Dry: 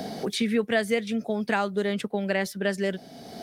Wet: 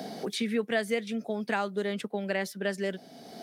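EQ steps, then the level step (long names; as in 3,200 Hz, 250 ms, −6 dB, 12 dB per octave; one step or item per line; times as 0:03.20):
high-pass filter 160 Hz 12 dB per octave
−4.0 dB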